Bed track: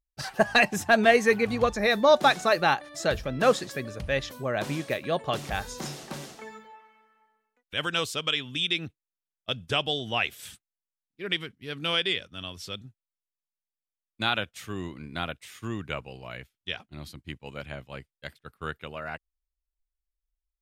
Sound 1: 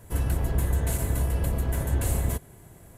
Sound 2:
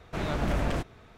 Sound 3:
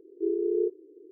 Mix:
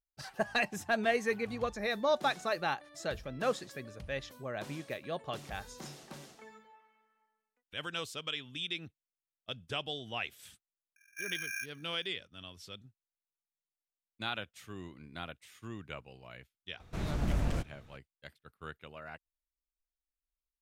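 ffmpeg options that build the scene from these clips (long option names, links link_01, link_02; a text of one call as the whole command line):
ffmpeg -i bed.wav -i cue0.wav -i cue1.wav -i cue2.wav -filter_complex "[0:a]volume=-10.5dB[link_01];[3:a]aeval=exprs='val(0)*sgn(sin(2*PI*2000*n/s))':channel_layout=same[link_02];[2:a]bass=frequency=250:gain=8,treble=frequency=4000:gain=7[link_03];[link_02]atrim=end=1.11,asetpts=PTS-STARTPTS,volume=-13.5dB,afade=type=in:duration=0.004:curve=hsin,afade=type=out:start_time=1.106:duration=0.004:curve=hsin,adelay=10960[link_04];[link_03]atrim=end=1.17,asetpts=PTS-STARTPTS,volume=-9.5dB,afade=type=in:duration=0.004:curve=hsin,afade=type=out:start_time=1.166:duration=0.004:curve=hsin,adelay=16800[link_05];[link_01][link_04][link_05]amix=inputs=3:normalize=0" out.wav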